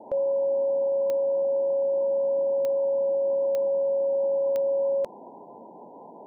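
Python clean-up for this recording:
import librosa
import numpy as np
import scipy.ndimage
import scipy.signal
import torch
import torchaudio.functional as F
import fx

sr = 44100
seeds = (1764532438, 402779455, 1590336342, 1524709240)

y = fx.fix_declick_ar(x, sr, threshold=10.0)
y = fx.noise_reduce(y, sr, print_start_s=5.66, print_end_s=6.16, reduce_db=29.0)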